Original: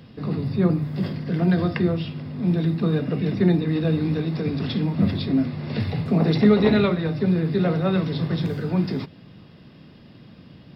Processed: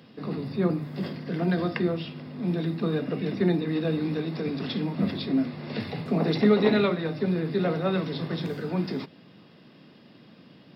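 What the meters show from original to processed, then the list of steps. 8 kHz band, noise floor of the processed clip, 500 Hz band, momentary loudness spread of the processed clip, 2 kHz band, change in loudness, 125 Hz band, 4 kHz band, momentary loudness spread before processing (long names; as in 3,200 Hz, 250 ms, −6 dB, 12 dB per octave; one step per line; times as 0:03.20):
can't be measured, −53 dBFS, −2.5 dB, 11 LU, −2.0 dB, −5.0 dB, −8.0 dB, −2.0 dB, 9 LU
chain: high-pass filter 210 Hz 12 dB per octave
level −2 dB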